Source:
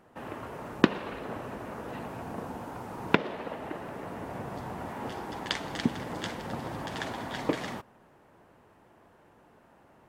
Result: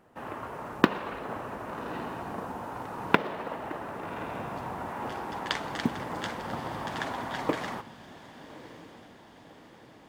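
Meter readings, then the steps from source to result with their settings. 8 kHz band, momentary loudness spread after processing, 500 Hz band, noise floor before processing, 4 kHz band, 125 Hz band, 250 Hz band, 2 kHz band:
−1.0 dB, 21 LU, +0.5 dB, −60 dBFS, −0.5 dB, −1.0 dB, −1.0 dB, +2.0 dB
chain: floating-point word with a short mantissa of 4 bits
on a send: feedback delay with all-pass diffusion 1,159 ms, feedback 58%, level −14 dB
on the sum: dynamic equaliser 1,100 Hz, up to +6 dB, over −49 dBFS, Q 0.91
level −1.5 dB

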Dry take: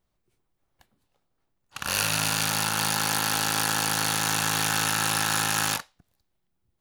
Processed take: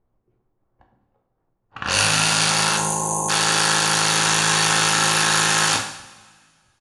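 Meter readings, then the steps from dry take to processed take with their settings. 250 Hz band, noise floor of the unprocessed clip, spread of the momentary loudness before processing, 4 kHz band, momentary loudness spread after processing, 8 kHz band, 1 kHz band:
+5.5 dB, −77 dBFS, 2 LU, +8.0 dB, 5 LU, +7.0 dB, +7.0 dB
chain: time-frequency box erased 0:02.77–0:03.29, 1,100–6,000 Hz
low-pass that shuts in the quiet parts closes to 1,000 Hz, open at −23 dBFS
downsampling to 22,050 Hz
coupled-rooms reverb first 0.66 s, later 1.9 s, from −17 dB, DRR 2 dB
level +6 dB

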